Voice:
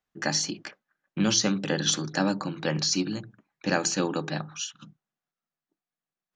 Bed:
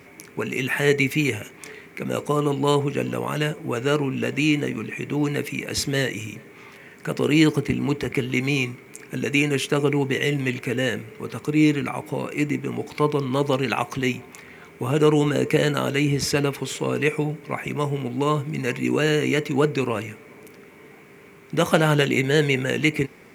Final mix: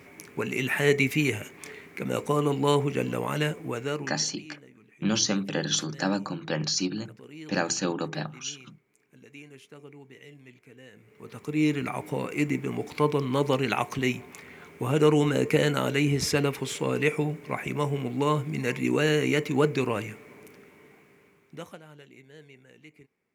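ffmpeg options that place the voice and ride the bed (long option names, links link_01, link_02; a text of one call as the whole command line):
ffmpeg -i stem1.wav -i stem2.wav -filter_complex "[0:a]adelay=3850,volume=-1.5dB[link_01];[1:a]volume=20.5dB,afade=type=out:start_time=3.49:duration=0.76:silence=0.0668344,afade=type=in:start_time=10.93:duration=1.08:silence=0.0668344,afade=type=out:start_time=20.16:duration=1.63:silence=0.0398107[link_02];[link_01][link_02]amix=inputs=2:normalize=0" out.wav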